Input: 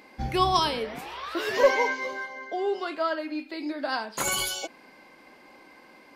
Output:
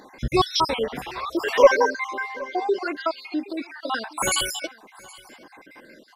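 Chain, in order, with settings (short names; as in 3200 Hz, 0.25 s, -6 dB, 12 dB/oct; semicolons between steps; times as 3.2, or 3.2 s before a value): random spectral dropouts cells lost 55%; on a send: echo 0.769 s -22.5 dB; on the sum: gain +7 dB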